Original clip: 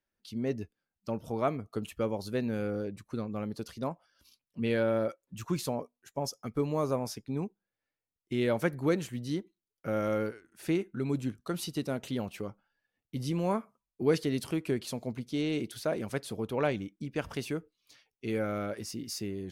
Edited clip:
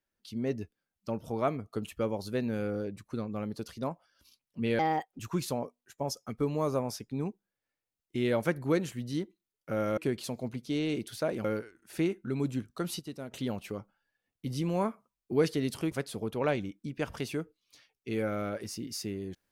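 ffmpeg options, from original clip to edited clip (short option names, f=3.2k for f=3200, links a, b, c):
-filter_complex "[0:a]asplit=8[a][b][c][d][e][f][g][h];[a]atrim=end=4.794[i];[b]atrim=start=4.79:end=5.36,asetpts=PTS-STARTPTS,asetrate=62181,aresample=44100[j];[c]atrim=start=5.356:end=10.142[k];[d]atrim=start=14.608:end=16.082[l];[e]atrim=start=10.138:end=11.692[m];[f]atrim=start=11.688:end=12.012,asetpts=PTS-STARTPTS,volume=-8dB[n];[g]atrim=start=12.008:end=14.612[o];[h]atrim=start=16.078[p];[i][j]acrossfade=d=0.004:c1=hsin:c2=hsin[q];[q][k]acrossfade=d=0.004:c1=hsin:c2=hsin[r];[r][l]acrossfade=d=0.004:c1=hsin:c2=hsin[s];[s][m]acrossfade=d=0.004:c1=hsin:c2=hsin[t];[t][n]acrossfade=d=0.004:c1=hsin:c2=hsin[u];[u][o]acrossfade=d=0.004:c1=hsin:c2=hsin[v];[v][p]acrossfade=d=0.004:c1=hsin:c2=hsin"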